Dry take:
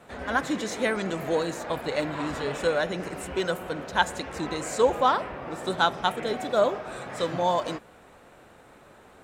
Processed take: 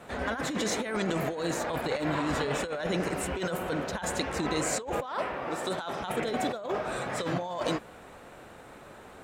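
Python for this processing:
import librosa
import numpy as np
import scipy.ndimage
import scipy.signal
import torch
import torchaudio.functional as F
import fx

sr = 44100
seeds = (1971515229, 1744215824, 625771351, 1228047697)

y = fx.low_shelf(x, sr, hz=210.0, db=-10.5, at=(5.06, 6.01))
y = fx.over_compress(y, sr, threshold_db=-31.0, ratio=-1.0)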